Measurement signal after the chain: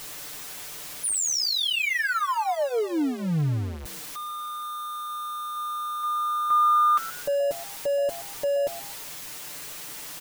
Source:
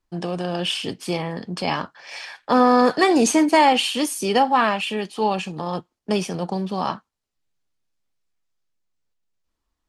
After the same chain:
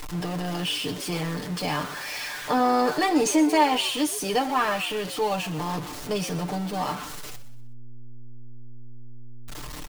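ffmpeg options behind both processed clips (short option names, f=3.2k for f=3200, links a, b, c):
-filter_complex "[0:a]aeval=exprs='val(0)+0.5*0.0631*sgn(val(0))':c=same,aecho=1:1:6.7:0.72,asplit=2[a][b];[b]asplit=3[c][d][e];[c]adelay=124,afreqshift=120,volume=-16dB[f];[d]adelay=248,afreqshift=240,volume=-24.9dB[g];[e]adelay=372,afreqshift=360,volume=-33.7dB[h];[f][g][h]amix=inputs=3:normalize=0[i];[a][i]amix=inputs=2:normalize=0,volume=-8dB"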